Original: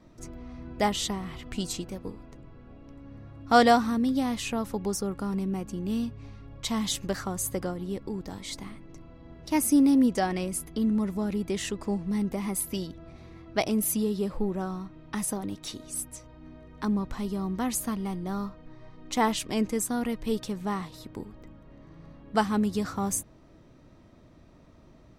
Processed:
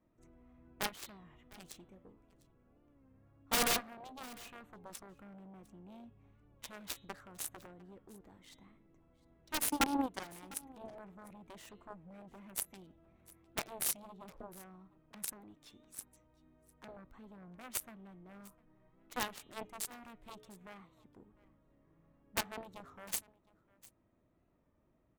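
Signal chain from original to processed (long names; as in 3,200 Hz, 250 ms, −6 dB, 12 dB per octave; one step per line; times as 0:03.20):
adaptive Wiener filter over 9 samples
high-shelf EQ 5,700 Hz +9.5 dB
hum removal 143.1 Hz, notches 28
harmonic generator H 7 −15 dB, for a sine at −6.5 dBFS
bass and treble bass −3 dB, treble −3 dB
wrap-around overflow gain 15.5 dB
single-tap delay 702 ms −22 dB
wow of a warped record 33 1/3 rpm, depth 100 cents
level −5.5 dB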